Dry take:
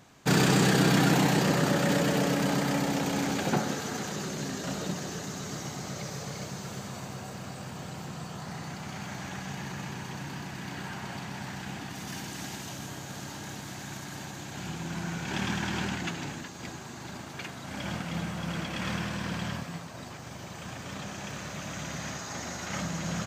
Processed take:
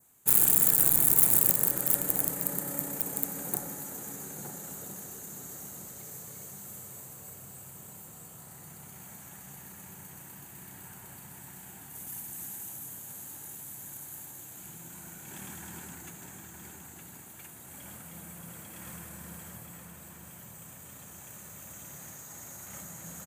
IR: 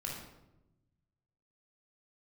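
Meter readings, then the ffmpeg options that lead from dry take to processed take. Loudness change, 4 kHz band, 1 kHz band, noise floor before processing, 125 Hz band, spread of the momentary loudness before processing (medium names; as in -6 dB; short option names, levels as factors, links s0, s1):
+6.5 dB, -15.5 dB, -13.0 dB, -42 dBFS, -14.0 dB, 15 LU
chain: -filter_complex "[0:a]asplit=2[s0][s1];[s1]adelay=914,lowpass=f=4100:p=1,volume=0.562,asplit=2[s2][s3];[s3]adelay=914,lowpass=f=4100:p=1,volume=0.35,asplit=2[s4][s5];[s5]adelay=914,lowpass=f=4100:p=1,volume=0.35,asplit=2[s6][s7];[s7]adelay=914,lowpass=f=4100:p=1,volume=0.35[s8];[s0][s2][s4][s6][s8]amix=inputs=5:normalize=0,aeval=exprs='(mod(5.96*val(0)+1,2)-1)/5.96':c=same,asplit=2[s9][s10];[1:a]atrim=start_sample=2205,asetrate=27783,aresample=44100[s11];[s10][s11]afir=irnorm=-1:irlink=0,volume=0.237[s12];[s9][s12]amix=inputs=2:normalize=0,adynamicequalizer=threshold=0.00631:dfrequency=3000:dqfactor=1.8:tfrequency=3000:tqfactor=1.8:attack=5:release=100:ratio=0.375:range=3:mode=cutabove:tftype=bell,aexciter=amount=15.8:drive=7.6:freq=7900,volume=0.15"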